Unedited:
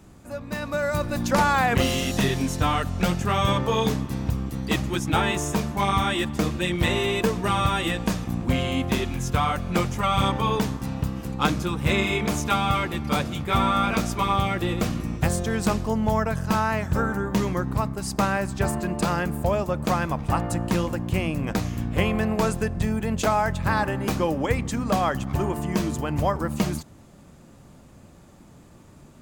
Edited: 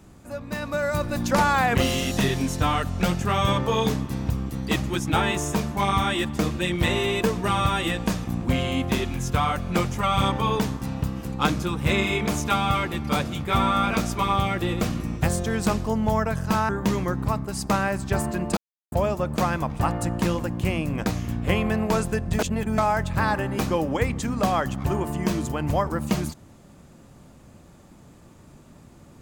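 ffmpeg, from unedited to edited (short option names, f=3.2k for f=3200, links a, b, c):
-filter_complex "[0:a]asplit=6[a][b][c][d][e][f];[a]atrim=end=16.692[g];[b]atrim=start=17.178:end=19.06,asetpts=PTS-STARTPTS,afade=t=out:st=1.878:d=0.004:c=hsin[h];[c]atrim=start=19.06:end=19.41,asetpts=PTS-STARTPTS,volume=0[i];[d]atrim=start=19.41:end=22.882,asetpts=PTS-STARTPTS,afade=t=in:d=0.004:c=hsin[j];[e]atrim=start=22.878:end=23.272,asetpts=PTS-STARTPTS,areverse[k];[f]atrim=start=23.268[l];[h][i][j]concat=n=3:v=0:a=1[m];[g][m]acrossfade=d=0.004:c1=hsin:c2=hsin[n];[n][k]acrossfade=d=0.004:c1=hsin:c2=hsin[o];[o][l]acrossfade=d=0.004:c1=hsin:c2=hsin"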